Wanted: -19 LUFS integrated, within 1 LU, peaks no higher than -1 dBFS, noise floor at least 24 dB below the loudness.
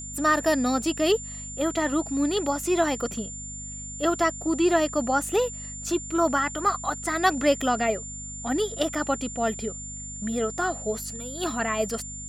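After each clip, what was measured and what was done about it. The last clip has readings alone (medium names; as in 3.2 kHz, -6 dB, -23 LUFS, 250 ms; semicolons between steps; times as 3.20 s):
hum 50 Hz; highest harmonic 250 Hz; hum level -39 dBFS; steady tone 7.2 kHz; tone level -36 dBFS; loudness -26.0 LUFS; peak level -8.5 dBFS; loudness target -19.0 LUFS
-> de-hum 50 Hz, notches 5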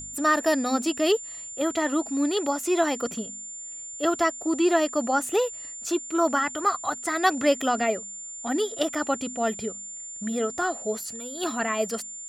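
hum not found; steady tone 7.2 kHz; tone level -36 dBFS
-> band-stop 7.2 kHz, Q 30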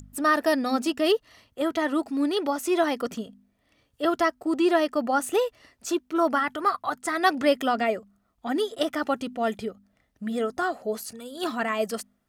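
steady tone not found; loudness -26.0 LUFS; peak level -9.0 dBFS; loudness target -19.0 LUFS
-> trim +7 dB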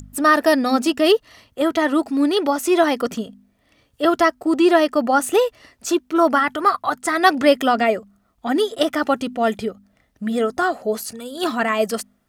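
loudness -19.0 LUFS; peak level -2.0 dBFS; noise floor -64 dBFS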